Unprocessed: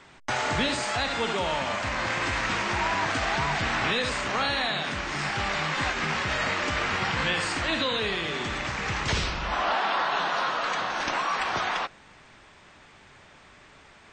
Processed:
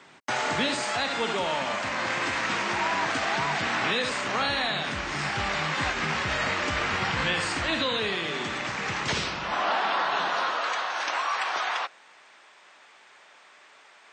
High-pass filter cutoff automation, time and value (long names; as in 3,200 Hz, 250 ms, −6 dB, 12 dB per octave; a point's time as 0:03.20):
0:04.17 160 Hz
0:04.71 44 Hz
0:07.59 44 Hz
0:08.22 140 Hz
0:10.21 140 Hz
0:10.82 560 Hz